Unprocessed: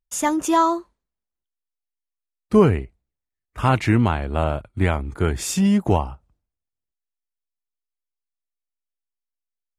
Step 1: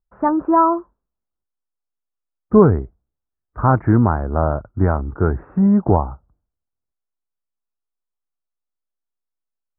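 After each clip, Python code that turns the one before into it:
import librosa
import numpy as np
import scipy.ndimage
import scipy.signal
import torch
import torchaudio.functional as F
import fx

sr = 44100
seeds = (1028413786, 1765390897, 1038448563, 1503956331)

y = scipy.signal.sosfilt(scipy.signal.butter(8, 1500.0, 'lowpass', fs=sr, output='sos'), x)
y = y * librosa.db_to_amplitude(3.5)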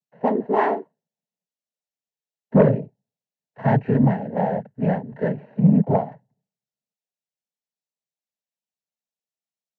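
y = fx.noise_vocoder(x, sr, seeds[0], bands=12)
y = fx.fixed_phaser(y, sr, hz=330.0, stages=6)
y = fx.cheby_harmonics(y, sr, harmonics=(5,), levels_db=(-20,), full_scale_db=-0.5)
y = y * librosa.db_to_amplitude(-2.0)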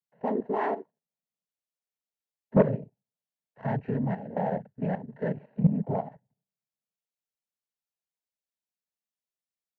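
y = fx.level_steps(x, sr, step_db=12)
y = y * librosa.db_to_amplitude(-3.5)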